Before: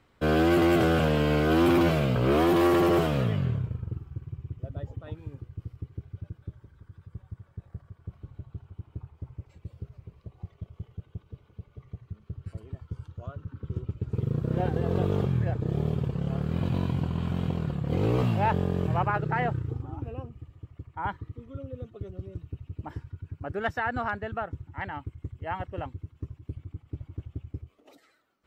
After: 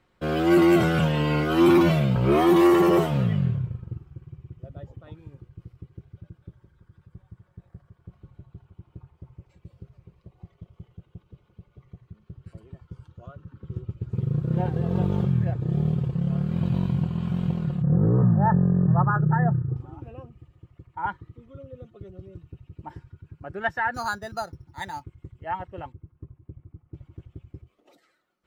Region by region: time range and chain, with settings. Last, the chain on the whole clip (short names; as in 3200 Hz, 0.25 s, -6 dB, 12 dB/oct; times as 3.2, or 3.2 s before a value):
17.82–19.76 rippled Chebyshev low-pass 1800 Hz, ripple 3 dB + bell 150 Hz +8 dB 1 oct
23.94–25.04 careless resampling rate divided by 8×, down none, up hold + LPF 3000 Hz 6 dB/oct
25.92–26.94 LPF 1200 Hz + bell 570 Hz -2.5 dB 2.2 oct
whole clip: spectral noise reduction 7 dB; high shelf 11000 Hz -3.5 dB; comb 5.6 ms, depth 36%; gain +4 dB